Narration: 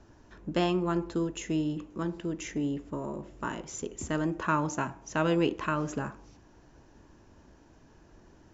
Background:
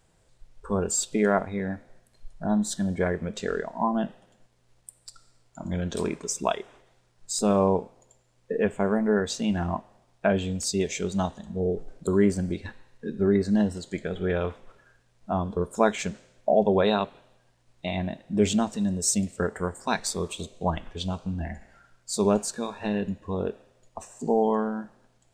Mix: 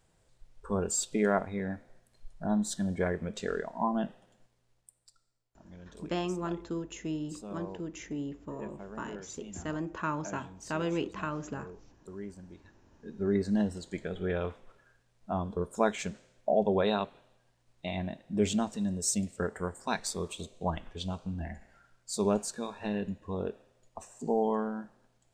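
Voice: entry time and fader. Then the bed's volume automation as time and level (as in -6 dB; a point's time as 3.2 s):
5.55 s, -5.5 dB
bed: 4.43 s -4.5 dB
5.42 s -21 dB
12.69 s -21 dB
13.36 s -5.5 dB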